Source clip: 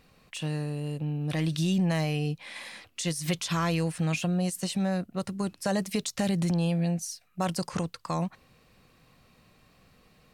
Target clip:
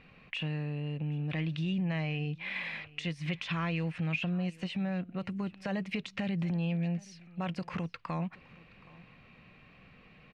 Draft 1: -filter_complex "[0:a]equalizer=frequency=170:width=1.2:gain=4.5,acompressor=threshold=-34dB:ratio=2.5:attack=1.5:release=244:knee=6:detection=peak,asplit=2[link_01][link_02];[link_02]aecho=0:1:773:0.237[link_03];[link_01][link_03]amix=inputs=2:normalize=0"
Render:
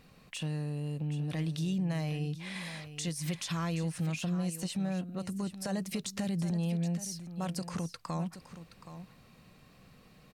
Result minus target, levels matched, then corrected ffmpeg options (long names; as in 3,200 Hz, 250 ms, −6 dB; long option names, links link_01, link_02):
echo-to-direct +10 dB; 2,000 Hz band −6.5 dB
-filter_complex "[0:a]equalizer=frequency=170:width=1.2:gain=4.5,acompressor=threshold=-34dB:ratio=2.5:attack=1.5:release=244:knee=6:detection=peak,lowpass=frequency=2500:width_type=q:width=2.7,asplit=2[link_01][link_02];[link_02]aecho=0:1:773:0.075[link_03];[link_01][link_03]amix=inputs=2:normalize=0"